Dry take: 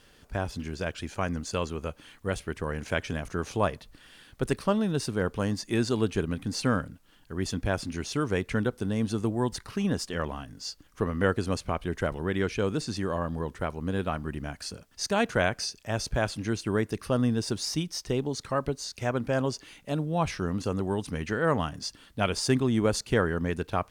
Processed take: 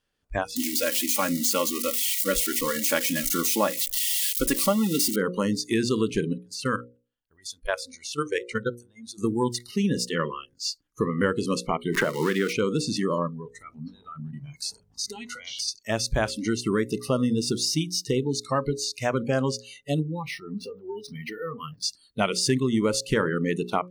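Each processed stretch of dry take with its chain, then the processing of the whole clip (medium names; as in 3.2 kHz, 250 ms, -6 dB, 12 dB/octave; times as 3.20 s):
0.56–5.16 s: zero-crossing glitches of -23.5 dBFS + comb 3.6 ms, depth 63%
6.33–9.18 s: peaking EQ 200 Hz -6 dB 1.3 oct + level held to a coarse grid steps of 14 dB
11.94–12.53 s: jump at every zero crossing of -34 dBFS + bass shelf 110 Hz -10.5 dB + three bands compressed up and down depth 100%
13.27–15.68 s: compression 20:1, threshold -33 dBFS + ever faster or slower copies 177 ms, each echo -7 st, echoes 2, each echo -6 dB
20.02–21.83 s: peaking EQ 7 kHz -12 dB 0.53 oct + compression 12:1, threshold -32 dBFS + decimation joined by straight lines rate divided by 3×
whole clip: spectral noise reduction 28 dB; hum notches 60/120/180/240/300/360/420/480/540 Hz; compression 2.5:1, threshold -29 dBFS; trim +7.5 dB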